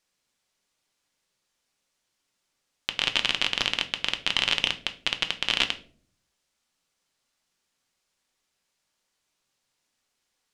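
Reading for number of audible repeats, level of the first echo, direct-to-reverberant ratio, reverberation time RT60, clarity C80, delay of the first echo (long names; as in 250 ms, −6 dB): no echo audible, no echo audible, 7.0 dB, 0.50 s, 20.0 dB, no echo audible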